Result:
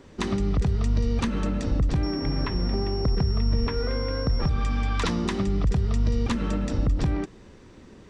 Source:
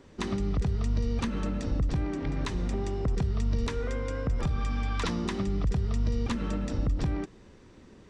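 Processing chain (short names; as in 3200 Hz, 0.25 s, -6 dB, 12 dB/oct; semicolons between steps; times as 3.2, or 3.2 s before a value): 2.03–4.49 pulse-width modulation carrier 5500 Hz; gain +4.5 dB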